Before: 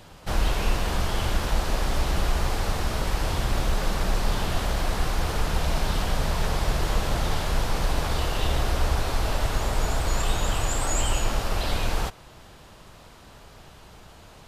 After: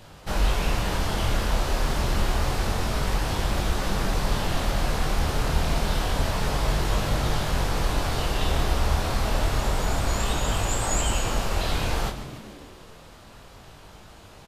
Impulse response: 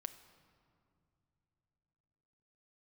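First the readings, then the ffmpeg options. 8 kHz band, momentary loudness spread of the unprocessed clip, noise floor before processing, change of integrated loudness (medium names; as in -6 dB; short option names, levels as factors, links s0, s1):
+1.0 dB, 2 LU, -49 dBFS, +1.0 dB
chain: -filter_complex "[0:a]flanger=delay=19.5:depth=6.2:speed=0.28,asplit=9[s0][s1][s2][s3][s4][s5][s6][s7][s8];[s1]adelay=147,afreqshift=-80,volume=0.237[s9];[s2]adelay=294,afreqshift=-160,volume=0.151[s10];[s3]adelay=441,afreqshift=-240,volume=0.0966[s11];[s4]adelay=588,afreqshift=-320,volume=0.0624[s12];[s5]adelay=735,afreqshift=-400,volume=0.0398[s13];[s6]adelay=882,afreqshift=-480,volume=0.0254[s14];[s7]adelay=1029,afreqshift=-560,volume=0.0162[s15];[s8]adelay=1176,afreqshift=-640,volume=0.0105[s16];[s0][s9][s10][s11][s12][s13][s14][s15][s16]amix=inputs=9:normalize=0,volume=1.5"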